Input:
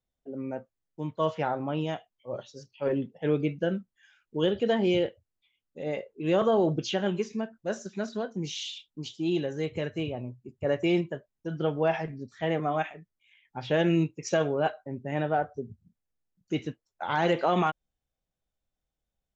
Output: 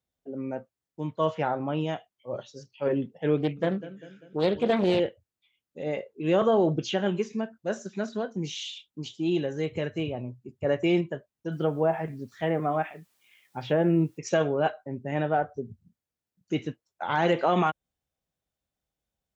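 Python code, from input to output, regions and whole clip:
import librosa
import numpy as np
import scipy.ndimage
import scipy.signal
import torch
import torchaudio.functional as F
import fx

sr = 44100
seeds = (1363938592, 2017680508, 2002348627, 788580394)

y = fx.chain(x, sr, fx.echo_feedback(ms=197, feedback_pct=50, wet_db=-15.5),
    fx.doppler_dist(depth_ms=0.41), at=(3.37, 5.0))
y = fx.chain(y, sr, fx.env_lowpass_down(base_hz=1200.0, full_db=-21.5),
    fx.quant_dither(seeds[0], bits=12, dither='triangular'), at=(11.52, 14.18))
y = scipy.signal.sosfilt(scipy.signal.butter(2, 62.0, 'highpass', fs=sr, output='sos'), y)
y = fx.dynamic_eq(y, sr, hz=4900.0, q=1.7, threshold_db=-53.0, ratio=4.0, max_db=-4)
y = y * 10.0 ** (1.5 / 20.0)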